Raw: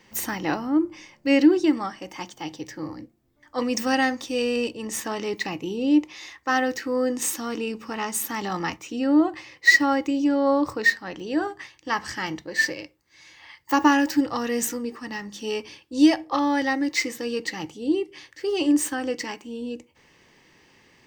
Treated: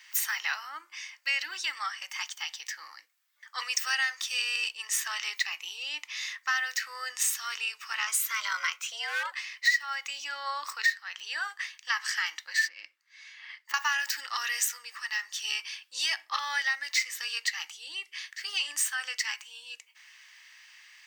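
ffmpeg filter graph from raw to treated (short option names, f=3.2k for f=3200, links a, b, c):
-filter_complex "[0:a]asettb=1/sr,asplit=3[a][b][c];[a]atrim=end=8.074[d];[b]atrim=start=8.07:end=9.32,asetpts=PTS-STARTPTS,afade=t=in:d=0.004:c=qsin,afade=t=out:st=1.246:d=0.004:c=qsin,afreqshift=210,volume=17dB,asoftclip=hard,volume=-17dB[e];[c]atrim=start=9.316[f];[d][e]acrossfade=d=0.004:c1=hsin:c2=qsin[g];[g][f]acrossfade=d=0.004:c1=qsin:c2=hsin,asettb=1/sr,asplit=3[h][i][j];[h]atrim=end=12.684[k];[i]atrim=start=12.68:end=13.74,asetpts=PTS-STARTPTS,afade=t=in:d=0.004:c=qsin,afade=t=out:st=1.056:d=0.004:c=qsin,lowpass=f=2.2k:p=1,acompressor=threshold=-34dB:ratio=6:attack=3.2:release=140:knee=1:detection=peak,lowshelf=f=490:t=q:w=1.5:g=9.5[l];[j]atrim=start=13.736[m];[k][l]acrossfade=d=0.004:c1=hsin:c2=qsin[n];[n][m]acrossfade=d=0.004:c1=qsin:c2=hsin,highpass=f=1.4k:w=0.5412,highpass=f=1.4k:w=1.3066,acompressor=threshold=-32dB:ratio=3,volume=5.5dB"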